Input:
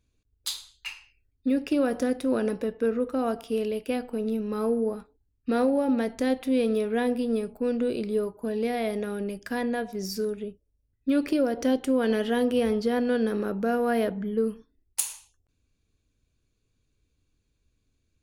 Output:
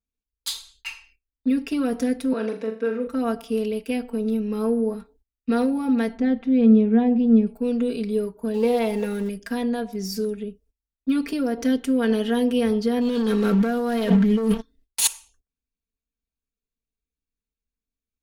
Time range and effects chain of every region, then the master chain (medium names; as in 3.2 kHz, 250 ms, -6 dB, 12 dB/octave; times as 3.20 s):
2.33–3.07 s: high-pass 320 Hz + distance through air 68 m + flutter echo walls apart 7 m, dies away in 0.37 s
6.17–7.47 s: tape spacing loss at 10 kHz 29 dB + small resonant body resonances 220/350/750 Hz, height 11 dB, ringing for 100 ms
8.54–9.29 s: jump at every zero crossing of -41 dBFS + peaking EQ 900 Hz +14 dB 0.2 oct + small resonant body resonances 500/2700 Hz, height 14 dB, ringing for 100 ms
13.01–15.07 s: peaking EQ 3.7 kHz +7 dB 0.8 oct + waveshaping leveller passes 3 + compressor with a negative ratio -24 dBFS
whole clip: gate -60 dBFS, range -21 dB; comb 4.4 ms, depth 97%; dynamic bell 590 Hz, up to -5 dB, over -35 dBFS, Q 1.2